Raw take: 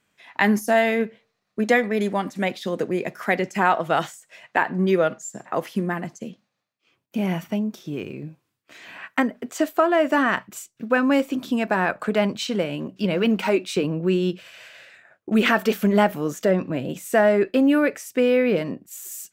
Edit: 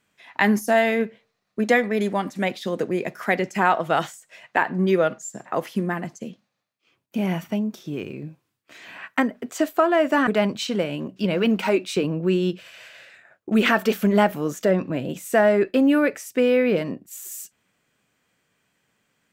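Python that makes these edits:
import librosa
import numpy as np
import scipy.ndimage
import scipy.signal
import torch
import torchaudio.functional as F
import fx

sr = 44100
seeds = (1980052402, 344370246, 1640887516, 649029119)

y = fx.edit(x, sr, fx.cut(start_s=10.27, length_s=1.8), tone=tone)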